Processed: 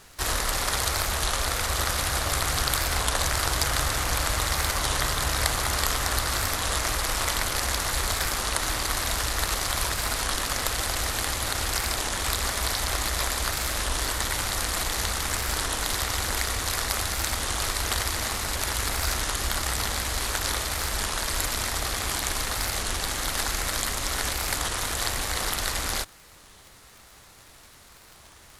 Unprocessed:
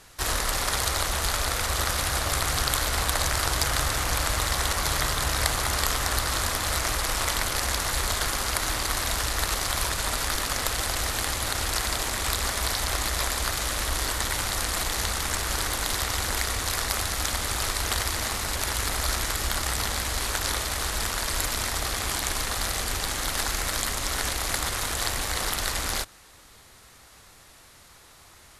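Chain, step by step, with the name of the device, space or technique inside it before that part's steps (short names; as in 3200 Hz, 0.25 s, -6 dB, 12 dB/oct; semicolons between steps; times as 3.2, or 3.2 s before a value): warped LP (record warp 33 1/3 rpm, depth 160 cents; crackle 69/s -37 dBFS; pink noise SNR 34 dB)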